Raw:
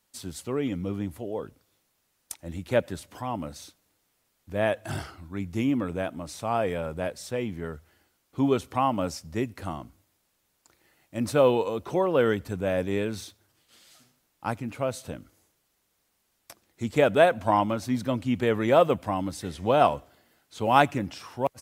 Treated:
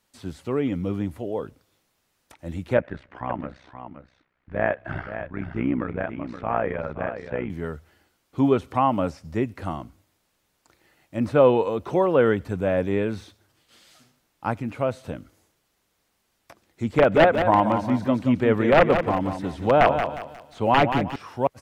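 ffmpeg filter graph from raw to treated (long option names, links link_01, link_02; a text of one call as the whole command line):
ffmpeg -i in.wav -filter_complex "[0:a]asettb=1/sr,asplit=3[link_01][link_02][link_03];[link_01]atrim=end=2.774[link_04];[link_02]atrim=start=2.77:end=7.5,asetpts=PTS-STARTPTS,afade=type=in:duration=0.004:curve=qsin,afade=type=out:start_time=4.726:duration=0.004:curve=qsin,lowpass=frequency=1900:width_type=q:width=1.9,tremolo=f=63:d=0.824,aecho=1:1:523:0.316,atrim=end_sample=208593[link_05];[link_03]atrim=start=7.496[link_06];[link_04][link_05]acrossfade=duration=0.004:curve1=hsin:curve2=qsin[link_07];[link_07][link_06]acrossfade=duration=0.004:curve1=qsin:curve2=hsin,asettb=1/sr,asplit=3[link_08][link_09][link_10];[link_08]atrim=end=16.944[link_11];[link_09]atrim=start=16.94:end=21.16,asetpts=PTS-STARTPTS,afade=type=in:duration=0.004:curve=qsin,afade=type=out:start_time=4.216:duration=0.004:curve=qsin,aeval=exprs='(mod(3.35*val(0)+1,2)-1)/3.35':channel_layout=same,aecho=1:1:179|358|537|716:0.398|0.131|0.0434|0.0143,atrim=end_sample=186102[link_12];[link_10]atrim=start=21.156[link_13];[link_11][link_12]acrossfade=duration=0.004:curve1=hsin:curve2=qsin[link_14];[link_14][link_13]acrossfade=duration=0.004:curve1=qsin:curve2=hsin,acrossover=split=2700[link_15][link_16];[link_16]acompressor=threshold=-52dB:ratio=4:attack=1:release=60[link_17];[link_15][link_17]amix=inputs=2:normalize=0,highshelf=frequency=6900:gain=-7,volume=4dB" out.wav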